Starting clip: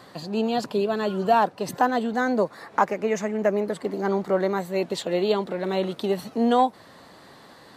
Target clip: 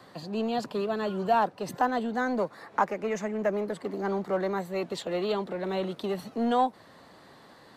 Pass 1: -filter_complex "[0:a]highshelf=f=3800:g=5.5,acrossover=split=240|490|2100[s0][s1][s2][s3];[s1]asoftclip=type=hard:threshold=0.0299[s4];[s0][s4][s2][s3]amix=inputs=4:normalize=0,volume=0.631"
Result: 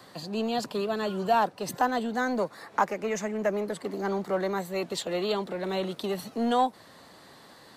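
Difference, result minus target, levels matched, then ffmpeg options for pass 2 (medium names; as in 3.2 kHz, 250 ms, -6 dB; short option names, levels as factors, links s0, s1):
8 kHz band +6.5 dB
-filter_complex "[0:a]highshelf=f=3800:g=-3.5,acrossover=split=240|490|2100[s0][s1][s2][s3];[s1]asoftclip=type=hard:threshold=0.0299[s4];[s0][s4][s2][s3]amix=inputs=4:normalize=0,volume=0.631"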